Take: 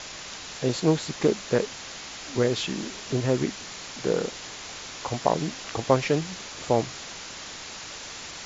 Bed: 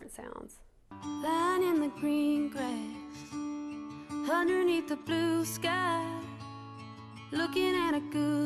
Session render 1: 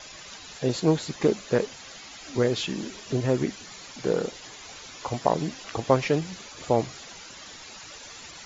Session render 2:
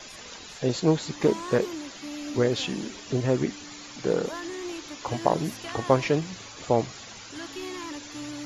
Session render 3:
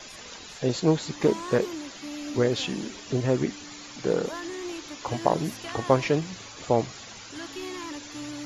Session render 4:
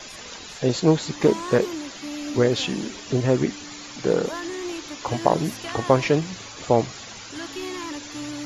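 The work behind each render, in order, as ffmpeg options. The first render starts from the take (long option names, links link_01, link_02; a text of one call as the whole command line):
ffmpeg -i in.wav -af "afftdn=noise_reduction=11:noise_floor=-40" out.wav
ffmpeg -i in.wav -i bed.wav -filter_complex "[1:a]volume=-8dB[link_01];[0:a][link_01]amix=inputs=2:normalize=0" out.wav
ffmpeg -i in.wav -af anull out.wav
ffmpeg -i in.wav -af "volume=4dB,alimiter=limit=-2dB:level=0:latency=1" out.wav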